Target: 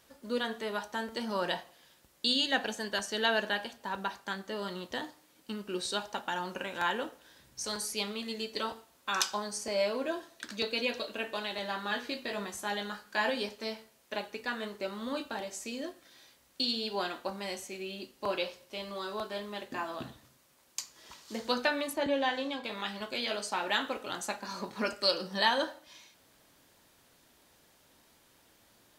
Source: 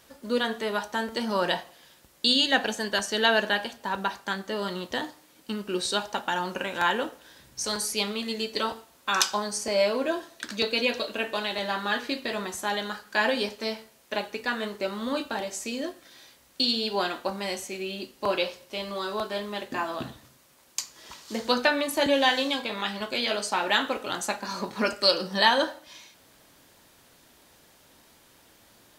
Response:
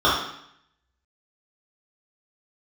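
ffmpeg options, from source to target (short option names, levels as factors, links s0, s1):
-filter_complex "[0:a]asettb=1/sr,asplit=3[s0][s1][s2];[s0]atrim=end=11.894[s3];[s1]atrim=start=11.89:end=13.3,asetpts=PTS-STARTPTS,afade=t=in:d=0.004:c=qsin,afade=t=out:st=1.406:d=0.004:c=qsin,asplit=2[s4][s5];[s5]adelay=20,volume=0.398[s6];[s4][s6]amix=inputs=2:normalize=0,atrim=end_sample=62181[s7];[s2]atrim=start=13.296[s8];[s3][s7]acrossfade=d=0.004:c1=hsin:c2=qsin[s9];[s9][s8]acrossfade=d=0.004:c1=qsin:c2=hsin,asettb=1/sr,asplit=3[s10][s11][s12];[s10]atrim=end=21.934[s13];[s11]atrim=start=21.93:end=22.64,asetpts=PTS-STARTPTS,afade=t=in:d=0.004:c=qsin,afade=t=out:st=0.706:d=0.004:c=qsin,highshelf=f=3500:g=-12[s14];[s12]atrim=start=22.636[s15];[s13][s14]acrossfade=d=0.004:c1=hsin:c2=qsin[s16];[s16][s15]acrossfade=d=0.004:c1=qsin:c2=hsin,volume=0.473"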